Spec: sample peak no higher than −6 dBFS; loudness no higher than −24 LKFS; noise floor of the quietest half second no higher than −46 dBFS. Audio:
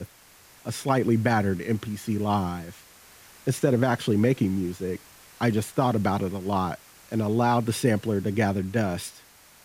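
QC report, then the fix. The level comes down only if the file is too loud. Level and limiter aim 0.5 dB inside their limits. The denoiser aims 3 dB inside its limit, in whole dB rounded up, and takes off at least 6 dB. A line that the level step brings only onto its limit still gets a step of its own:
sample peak −8.5 dBFS: in spec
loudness −26.0 LKFS: in spec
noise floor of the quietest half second −53 dBFS: in spec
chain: no processing needed

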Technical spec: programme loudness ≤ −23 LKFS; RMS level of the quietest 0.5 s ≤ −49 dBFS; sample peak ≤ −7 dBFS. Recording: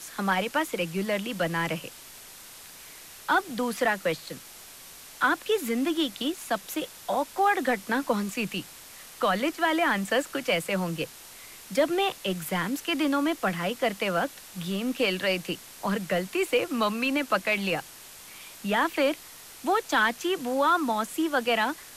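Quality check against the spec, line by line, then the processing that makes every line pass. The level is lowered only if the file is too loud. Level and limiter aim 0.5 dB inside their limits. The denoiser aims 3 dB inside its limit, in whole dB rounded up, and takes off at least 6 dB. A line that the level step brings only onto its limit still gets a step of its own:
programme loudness −27.5 LKFS: in spec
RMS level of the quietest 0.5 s −47 dBFS: out of spec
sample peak −12.5 dBFS: in spec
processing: broadband denoise 6 dB, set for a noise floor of −47 dBFS

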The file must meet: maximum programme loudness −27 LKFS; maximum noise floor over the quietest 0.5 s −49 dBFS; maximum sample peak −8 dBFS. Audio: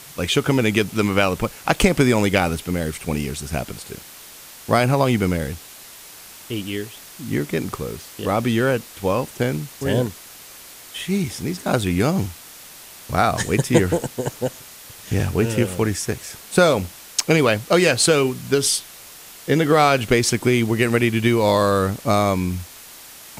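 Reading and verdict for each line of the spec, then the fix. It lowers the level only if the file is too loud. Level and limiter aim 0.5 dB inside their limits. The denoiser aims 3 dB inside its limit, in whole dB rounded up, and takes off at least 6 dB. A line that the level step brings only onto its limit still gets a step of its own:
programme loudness −20.5 LKFS: out of spec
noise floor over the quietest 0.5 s −42 dBFS: out of spec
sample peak −1.5 dBFS: out of spec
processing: broadband denoise 6 dB, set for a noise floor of −42 dBFS
level −7 dB

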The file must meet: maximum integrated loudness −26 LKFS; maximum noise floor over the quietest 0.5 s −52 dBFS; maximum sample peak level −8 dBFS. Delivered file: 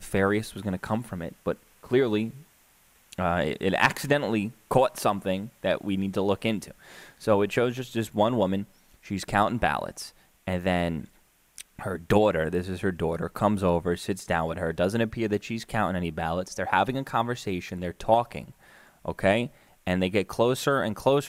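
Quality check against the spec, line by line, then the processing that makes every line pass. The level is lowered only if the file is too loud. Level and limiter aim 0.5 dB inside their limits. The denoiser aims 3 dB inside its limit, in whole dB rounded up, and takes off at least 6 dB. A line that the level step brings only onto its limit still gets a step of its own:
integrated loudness −27.0 LKFS: in spec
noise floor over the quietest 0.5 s −61 dBFS: in spec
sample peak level −6.5 dBFS: out of spec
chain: brickwall limiter −8.5 dBFS

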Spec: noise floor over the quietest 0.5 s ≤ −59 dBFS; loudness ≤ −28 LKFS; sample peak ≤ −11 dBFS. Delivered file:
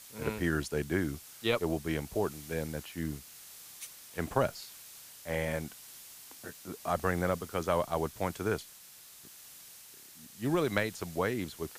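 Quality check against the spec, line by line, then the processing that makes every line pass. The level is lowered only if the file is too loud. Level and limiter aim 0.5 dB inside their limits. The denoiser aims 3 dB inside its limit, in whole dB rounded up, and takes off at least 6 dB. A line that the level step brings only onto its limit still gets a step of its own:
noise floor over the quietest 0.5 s −53 dBFS: out of spec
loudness −34.0 LKFS: in spec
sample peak −13.0 dBFS: in spec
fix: broadband denoise 9 dB, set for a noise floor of −53 dBFS

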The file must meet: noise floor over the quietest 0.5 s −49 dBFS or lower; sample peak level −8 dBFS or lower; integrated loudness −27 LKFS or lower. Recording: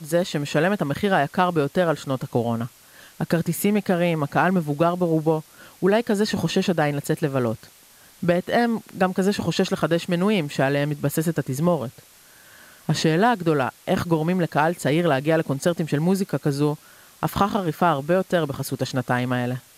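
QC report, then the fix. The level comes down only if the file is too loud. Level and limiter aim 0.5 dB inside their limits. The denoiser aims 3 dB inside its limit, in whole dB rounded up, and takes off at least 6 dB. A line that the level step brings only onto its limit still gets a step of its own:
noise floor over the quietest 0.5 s −51 dBFS: in spec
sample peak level −5.5 dBFS: out of spec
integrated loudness −22.5 LKFS: out of spec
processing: level −5 dB

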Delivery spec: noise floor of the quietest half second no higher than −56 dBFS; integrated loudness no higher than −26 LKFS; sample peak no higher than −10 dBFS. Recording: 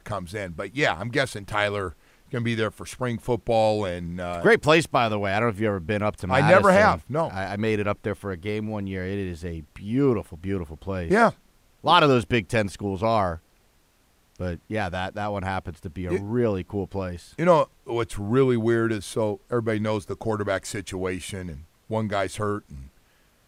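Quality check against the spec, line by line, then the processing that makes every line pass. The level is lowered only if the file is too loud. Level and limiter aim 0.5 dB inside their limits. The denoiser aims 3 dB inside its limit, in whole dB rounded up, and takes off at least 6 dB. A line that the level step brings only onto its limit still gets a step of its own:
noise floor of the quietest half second −62 dBFS: in spec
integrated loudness −24.5 LKFS: out of spec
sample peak −4.0 dBFS: out of spec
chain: level −2 dB
brickwall limiter −10.5 dBFS

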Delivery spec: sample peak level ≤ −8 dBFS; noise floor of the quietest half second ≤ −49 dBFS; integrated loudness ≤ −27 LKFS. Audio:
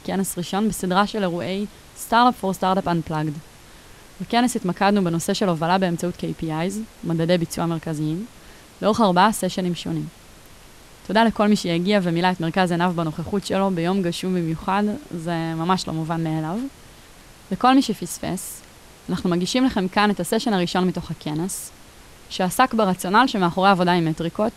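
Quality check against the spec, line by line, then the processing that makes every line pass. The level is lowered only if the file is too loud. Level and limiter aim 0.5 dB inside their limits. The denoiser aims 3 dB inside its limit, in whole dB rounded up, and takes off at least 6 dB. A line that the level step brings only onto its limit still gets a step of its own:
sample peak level −5.0 dBFS: out of spec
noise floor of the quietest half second −46 dBFS: out of spec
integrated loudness −21.5 LKFS: out of spec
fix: level −6 dB

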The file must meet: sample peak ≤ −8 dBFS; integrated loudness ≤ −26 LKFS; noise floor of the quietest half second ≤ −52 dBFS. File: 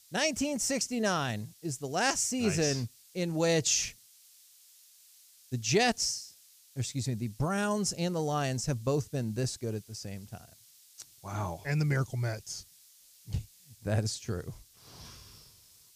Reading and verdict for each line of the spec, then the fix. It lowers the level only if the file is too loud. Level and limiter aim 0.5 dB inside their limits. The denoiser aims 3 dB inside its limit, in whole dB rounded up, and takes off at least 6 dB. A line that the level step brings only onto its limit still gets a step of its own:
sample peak −12.5 dBFS: in spec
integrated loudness −31.5 LKFS: in spec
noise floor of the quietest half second −59 dBFS: in spec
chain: no processing needed

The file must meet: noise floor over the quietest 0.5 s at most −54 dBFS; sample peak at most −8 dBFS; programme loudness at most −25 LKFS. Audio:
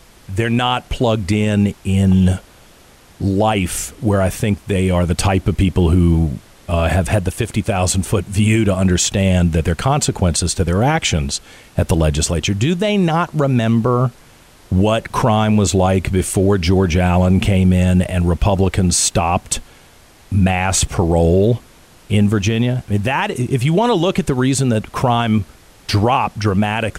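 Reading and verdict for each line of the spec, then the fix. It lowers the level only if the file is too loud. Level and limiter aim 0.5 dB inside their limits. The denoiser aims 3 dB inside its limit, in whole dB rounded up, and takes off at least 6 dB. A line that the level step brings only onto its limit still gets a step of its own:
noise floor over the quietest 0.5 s −46 dBFS: out of spec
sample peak −5.5 dBFS: out of spec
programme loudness −16.5 LKFS: out of spec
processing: level −9 dB

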